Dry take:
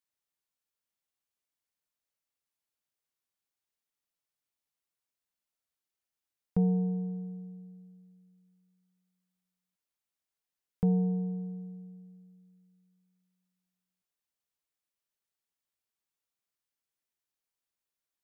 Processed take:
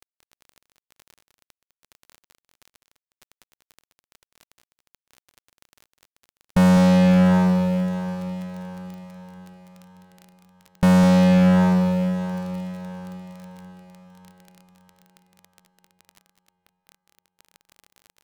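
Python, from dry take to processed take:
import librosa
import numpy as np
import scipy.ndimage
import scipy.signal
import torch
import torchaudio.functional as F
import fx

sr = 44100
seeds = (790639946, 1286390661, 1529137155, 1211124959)

y = fx.fuzz(x, sr, gain_db=47.0, gate_db=-49.0)
y = fx.formant_shift(y, sr, semitones=-4)
y = fx.echo_diffused(y, sr, ms=602, feedback_pct=48, wet_db=-11.0)
y = fx.dmg_crackle(y, sr, seeds[0], per_s=16.0, level_db=-31.0)
y = y + 10.0 ** (-9.0 / 20.0) * np.pad(y, (int(204 * sr / 1000.0), 0))[:len(y)]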